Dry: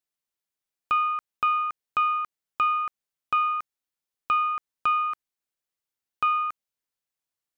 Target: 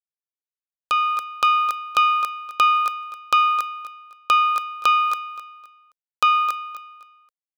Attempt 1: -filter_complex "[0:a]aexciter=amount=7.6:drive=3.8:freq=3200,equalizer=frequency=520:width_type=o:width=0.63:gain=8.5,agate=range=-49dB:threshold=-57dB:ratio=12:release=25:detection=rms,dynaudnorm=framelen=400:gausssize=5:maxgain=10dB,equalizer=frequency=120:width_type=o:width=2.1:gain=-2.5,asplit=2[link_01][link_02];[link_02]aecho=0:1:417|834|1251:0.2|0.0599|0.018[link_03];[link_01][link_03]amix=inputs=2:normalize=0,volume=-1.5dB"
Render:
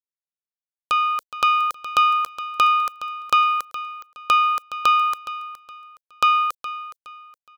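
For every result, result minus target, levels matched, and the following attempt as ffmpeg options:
echo 156 ms late; 125 Hz band +6.0 dB
-filter_complex "[0:a]aexciter=amount=7.6:drive=3.8:freq=3200,equalizer=frequency=520:width_type=o:width=0.63:gain=8.5,agate=range=-49dB:threshold=-57dB:ratio=12:release=25:detection=rms,dynaudnorm=framelen=400:gausssize=5:maxgain=10dB,equalizer=frequency=120:width_type=o:width=2.1:gain=-2.5,asplit=2[link_01][link_02];[link_02]aecho=0:1:261|522|783:0.2|0.0599|0.018[link_03];[link_01][link_03]amix=inputs=2:normalize=0,volume=-1.5dB"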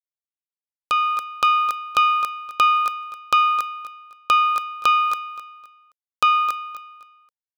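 125 Hz band +6.0 dB
-filter_complex "[0:a]aexciter=amount=7.6:drive=3.8:freq=3200,equalizer=frequency=520:width_type=o:width=0.63:gain=8.5,agate=range=-49dB:threshold=-57dB:ratio=12:release=25:detection=rms,dynaudnorm=framelen=400:gausssize=5:maxgain=10dB,equalizer=frequency=120:width_type=o:width=2.1:gain=-10,asplit=2[link_01][link_02];[link_02]aecho=0:1:261|522|783:0.2|0.0599|0.018[link_03];[link_01][link_03]amix=inputs=2:normalize=0,volume=-1.5dB"

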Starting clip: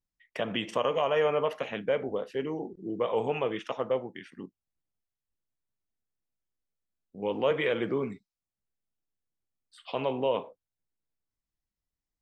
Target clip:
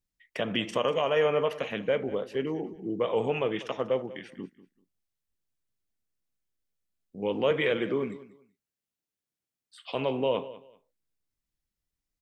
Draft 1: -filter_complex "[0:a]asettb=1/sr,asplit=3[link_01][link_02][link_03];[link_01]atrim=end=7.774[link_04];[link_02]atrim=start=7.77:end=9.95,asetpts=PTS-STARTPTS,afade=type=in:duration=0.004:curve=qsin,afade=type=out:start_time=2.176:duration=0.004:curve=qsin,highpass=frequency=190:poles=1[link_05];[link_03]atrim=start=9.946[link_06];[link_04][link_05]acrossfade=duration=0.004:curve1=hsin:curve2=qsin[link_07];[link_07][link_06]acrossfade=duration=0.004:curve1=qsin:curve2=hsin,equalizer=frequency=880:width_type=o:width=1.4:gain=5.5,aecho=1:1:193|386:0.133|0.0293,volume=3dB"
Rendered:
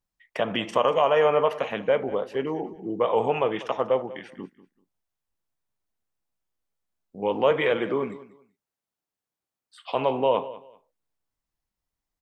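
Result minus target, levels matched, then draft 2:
1,000 Hz band +4.5 dB
-filter_complex "[0:a]asettb=1/sr,asplit=3[link_01][link_02][link_03];[link_01]atrim=end=7.774[link_04];[link_02]atrim=start=7.77:end=9.95,asetpts=PTS-STARTPTS,afade=type=in:duration=0.004:curve=qsin,afade=type=out:start_time=2.176:duration=0.004:curve=qsin,highpass=frequency=190:poles=1[link_05];[link_03]atrim=start=9.946[link_06];[link_04][link_05]acrossfade=duration=0.004:curve1=hsin:curve2=qsin[link_07];[link_07][link_06]acrossfade=duration=0.004:curve1=qsin:curve2=hsin,equalizer=frequency=880:width_type=o:width=1.4:gain=-4.5,aecho=1:1:193|386:0.133|0.0293,volume=3dB"

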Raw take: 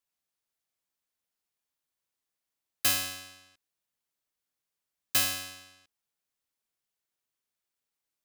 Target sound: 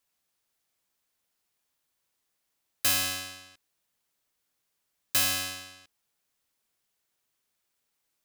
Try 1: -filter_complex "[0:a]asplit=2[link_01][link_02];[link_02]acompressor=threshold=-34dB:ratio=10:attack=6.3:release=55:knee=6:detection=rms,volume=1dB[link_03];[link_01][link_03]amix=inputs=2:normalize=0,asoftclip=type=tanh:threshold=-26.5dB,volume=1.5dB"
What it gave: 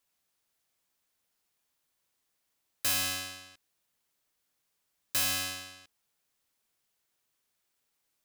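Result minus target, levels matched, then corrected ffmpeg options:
soft clipping: distortion +6 dB
-filter_complex "[0:a]asplit=2[link_01][link_02];[link_02]acompressor=threshold=-34dB:ratio=10:attack=6.3:release=55:knee=6:detection=rms,volume=1dB[link_03];[link_01][link_03]amix=inputs=2:normalize=0,asoftclip=type=tanh:threshold=-19.5dB,volume=1.5dB"

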